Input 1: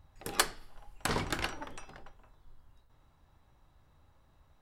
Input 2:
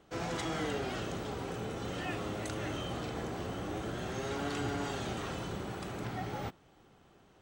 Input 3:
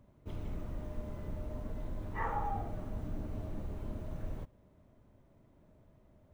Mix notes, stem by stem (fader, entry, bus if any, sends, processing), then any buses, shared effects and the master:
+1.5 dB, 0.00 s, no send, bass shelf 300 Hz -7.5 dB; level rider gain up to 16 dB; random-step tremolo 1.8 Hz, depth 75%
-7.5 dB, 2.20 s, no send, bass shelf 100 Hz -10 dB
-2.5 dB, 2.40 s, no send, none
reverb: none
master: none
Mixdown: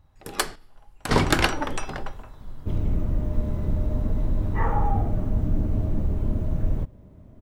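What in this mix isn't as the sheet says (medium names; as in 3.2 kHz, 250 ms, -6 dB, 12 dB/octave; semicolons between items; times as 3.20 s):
stem 2: muted; stem 3 -2.5 dB -> +6.0 dB; master: extra bass shelf 420 Hz +11 dB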